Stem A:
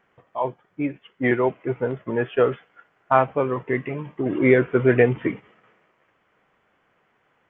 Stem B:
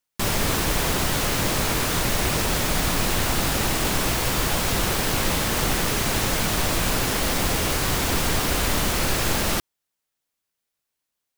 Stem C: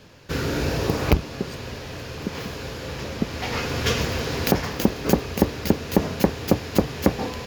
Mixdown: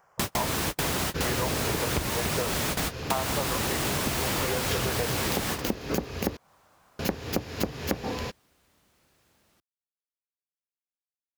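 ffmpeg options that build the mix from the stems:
-filter_complex "[0:a]firequalizer=gain_entry='entry(150,0);entry(240,-14);entry(570,5);entry(1000,8);entry(1900,-5);entry(3300,-8);entry(4900,12)':delay=0.05:min_phase=1,acompressor=threshold=-22dB:ratio=2,volume=0dB,asplit=2[a][b];[1:a]highpass=64,volume=3dB[c];[2:a]adelay=850,volume=0dB,asplit=3[d][e][f];[d]atrim=end=6.37,asetpts=PTS-STARTPTS,afade=t=out:st=6.366:d=0.004:c=hsin[g];[e]atrim=start=6.37:end=6.99,asetpts=PTS-STARTPTS,volume=0[h];[f]atrim=start=6.99,asetpts=PTS-STARTPTS,afade=t=in:d=0.004:c=hsin[i];[g][h][i]concat=n=3:v=0:a=1[j];[b]apad=whole_len=501714[k];[c][k]sidechaingate=range=-46dB:threshold=-52dB:ratio=16:detection=peak[l];[a][l][j]amix=inputs=3:normalize=0,acompressor=threshold=-25dB:ratio=6"

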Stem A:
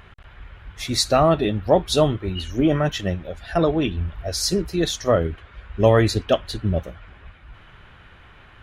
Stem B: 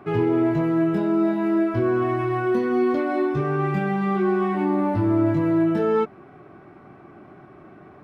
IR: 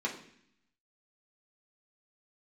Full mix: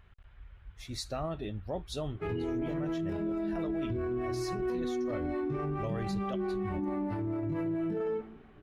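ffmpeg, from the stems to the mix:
-filter_complex "[0:a]lowshelf=f=100:g=11,volume=-18dB,asplit=2[a][b];[1:a]acrossover=split=400[c][d];[c]aeval=exprs='val(0)*(1-0.7/2+0.7/2*cos(2*PI*4.5*n/s))':c=same[e];[d]aeval=exprs='val(0)*(1-0.7/2-0.7/2*cos(2*PI*4.5*n/s))':c=same[f];[e][f]amix=inputs=2:normalize=0,adelay=2150,volume=-6dB,asplit=2[g][h];[h]volume=-13.5dB[i];[b]apad=whole_len=449035[j];[g][j]sidechaingate=range=-33dB:threshold=-59dB:ratio=16:detection=peak[k];[2:a]atrim=start_sample=2205[l];[i][l]afir=irnorm=-1:irlink=0[m];[a][k][m]amix=inputs=3:normalize=0,alimiter=level_in=2.5dB:limit=-24dB:level=0:latency=1:release=29,volume=-2.5dB"

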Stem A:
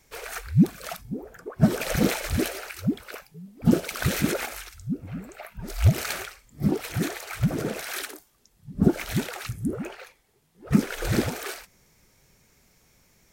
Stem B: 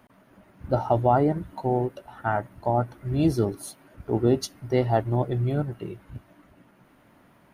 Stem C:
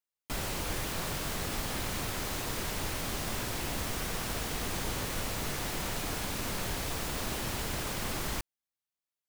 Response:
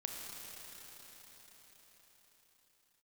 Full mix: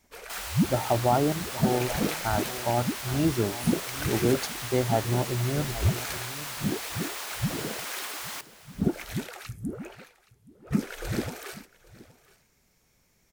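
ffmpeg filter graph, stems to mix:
-filter_complex "[0:a]volume=-6dB,asplit=2[a][b];[b]volume=-21dB[c];[1:a]agate=range=-33dB:threshold=-51dB:ratio=3:detection=peak,volume=-3dB,asplit=2[d][e];[e]volume=-15dB[f];[2:a]highpass=800,volume=1dB,asplit=2[g][h];[h]volume=-16dB[i];[c][f][i]amix=inputs=3:normalize=0,aecho=0:1:821:1[j];[a][d][g][j]amix=inputs=4:normalize=0"

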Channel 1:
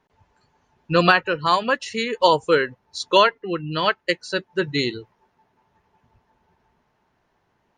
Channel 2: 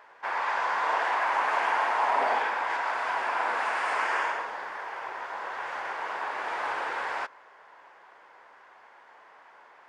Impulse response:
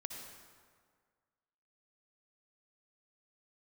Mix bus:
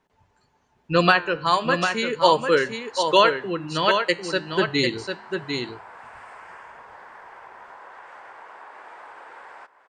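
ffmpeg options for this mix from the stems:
-filter_complex "[0:a]flanger=delay=5.7:depth=8.2:regen=-87:speed=0.36:shape=triangular,volume=2.5dB,asplit=4[a][b][c][d];[b]volume=-22.5dB[e];[c]volume=-6.5dB[f];[1:a]acompressor=threshold=-36dB:ratio=6,adynamicequalizer=threshold=0.00282:dfrequency=2100:dqfactor=0.7:tfrequency=2100:tqfactor=0.7:attack=5:release=100:ratio=0.375:range=2.5:mode=cutabove:tftype=highshelf,adelay=2400,volume=-10dB,asplit=2[g][h];[h]volume=-11.5dB[i];[d]apad=whole_len=541655[j];[g][j]sidechaincompress=threshold=-32dB:ratio=8:attack=16:release=142[k];[2:a]atrim=start_sample=2205[l];[e][i]amix=inputs=2:normalize=0[m];[m][l]afir=irnorm=-1:irlink=0[n];[f]aecho=0:1:748:1[o];[a][k][n][o]amix=inputs=4:normalize=0,equalizer=f=8.1k:w=4.3:g=8,bandreject=f=50:t=h:w=6,bandreject=f=100:t=h:w=6,bandreject=f=150:t=h:w=6,dynaudnorm=f=210:g=17:m=5dB"

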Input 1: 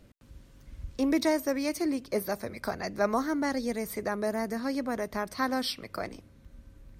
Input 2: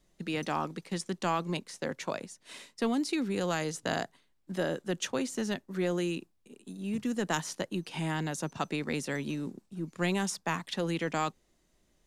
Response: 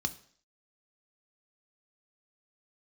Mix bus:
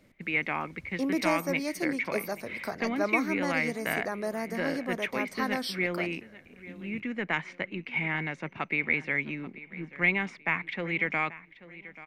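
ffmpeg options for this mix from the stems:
-filter_complex "[0:a]highpass=130,volume=-2.5dB[a];[1:a]lowpass=f=2.2k:t=q:w=14,volume=-3dB,asplit=2[b][c];[c]volume=-17.5dB,aecho=0:1:835|1670|2505|3340|4175:1|0.32|0.102|0.0328|0.0105[d];[a][b][d]amix=inputs=3:normalize=0"

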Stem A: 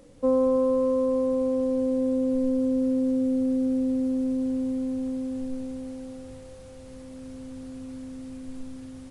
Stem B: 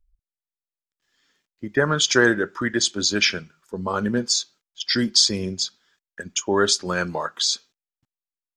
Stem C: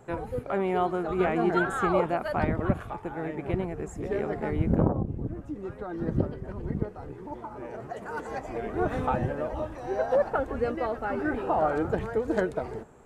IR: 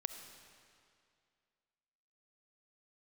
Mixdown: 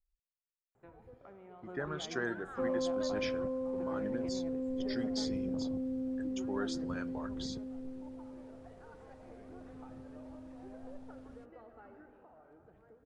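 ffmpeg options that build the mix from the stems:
-filter_complex "[0:a]adelay=2350,volume=-12dB[a];[1:a]volume=-18.5dB,asplit=2[b][c];[2:a]acompressor=threshold=-32dB:ratio=6,adelay=750,volume=-14dB,afade=t=out:st=11.88:d=0.26:silence=0.473151,asplit=2[d][e];[e]volume=-4dB[f];[c]apad=whole_len=608723[g];[d][g]sidechaingate=range=-33dB:threshold=-59dB:ratio=16:detection=peak[h];[3:a]atrim=start_sample=2205[i];[f][i]afir=irnorm=-1:irlink=0[j];[a][b][h][j]amix=inputs=4:normalize=0,lowpass=f=2.8k:p=1"

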